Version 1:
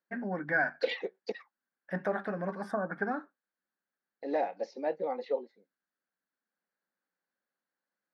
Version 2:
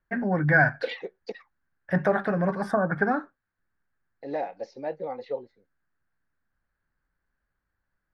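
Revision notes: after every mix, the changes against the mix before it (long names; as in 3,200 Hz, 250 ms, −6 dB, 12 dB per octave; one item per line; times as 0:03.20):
first voice +8.5 dB
master: remove linear-phase brick-wall high-pass 170 Hz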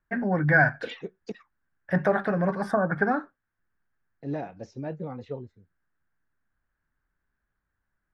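second voice: remove loudspeaker in its box 350–5,900 Hz, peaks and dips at 530 Hz +9 dB, 810 Hz +8 dB, 1,400 Hz −3 dB, 2,000 Hz +8 dB, 4,400 Hz +9 dB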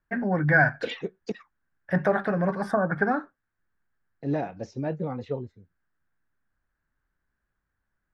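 second voice +4.5 dB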